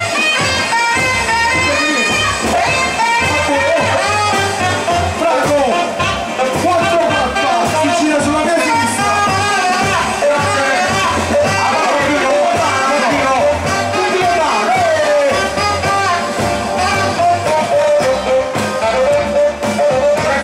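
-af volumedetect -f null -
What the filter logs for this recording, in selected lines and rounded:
mean_volume: -13.6 dB
max_volume: -4.0 dB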